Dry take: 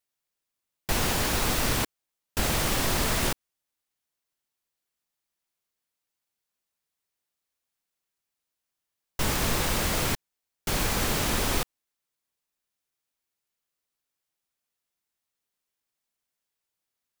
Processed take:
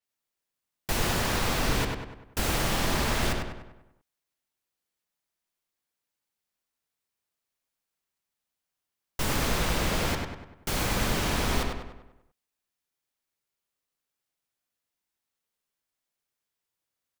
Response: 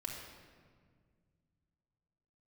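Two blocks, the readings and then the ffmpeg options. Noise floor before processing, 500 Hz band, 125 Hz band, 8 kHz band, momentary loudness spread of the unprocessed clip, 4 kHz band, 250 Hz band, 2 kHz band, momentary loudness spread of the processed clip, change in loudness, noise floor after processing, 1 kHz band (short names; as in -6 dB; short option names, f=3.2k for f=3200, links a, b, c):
under -85 dBFS, 0.0 dB, +0.5 dB, -4.0 dB, 10 LU, -1.5 dB, +0.5 dB, -0.5 dB, 13 LU, -1.5 dB, under -85 dBFS, 0.0 dB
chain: -filter_complex "[0:a]asplit=2[a][b];[b]adelay=98,lowpass=f=3.3k:p=1,volume=-3dB,asplit=2[c][d];[d]adelay=98,lowpass=f=3.3k:p=1,volume=0.51,asplit=2[e][f];[f]adelay=98,lowpass=f=3.3k:p=1,volume=0.51,asplit=2[g][h];[h]adelay=98,lowpass=f=3.3k:p=1,volume=0.51,asplit=2[i][j];[j]adelay=98,lowpass=f=3.3k:p=1,volume=0.51,asplit=2[k][l];[l]adelay=98,lowpass=f=3.3k:p=1,volume=0.51,asplit=2[m][n];[n]adelay=98,lowpass=f=3.3k:p=1,volume=0.51[o];[c][e][g][i][k][m][o]amix=inputs=7:normalize=0[p];[a][p]amix=inputs=2:normalize=0,adynamicequalizer=threshold=0.00501:dfrequency=6700:dqfactor=0.7:tfrequency=6700:tqfactor=0.7:attack=5:release=100:ratio=0.375:range=3.5:mode=cutabove:tftype=highshelf,volume=-2dB"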